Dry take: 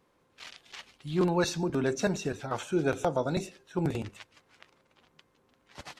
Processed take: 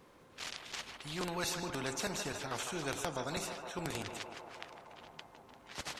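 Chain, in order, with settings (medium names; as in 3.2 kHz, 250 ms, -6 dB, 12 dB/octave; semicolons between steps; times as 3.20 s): band-passed feedback delay 155 ms, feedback 79%, band-pass 850 Hz, level -10 dB; spectrum-flattening compressor 2:1; trim -2 dB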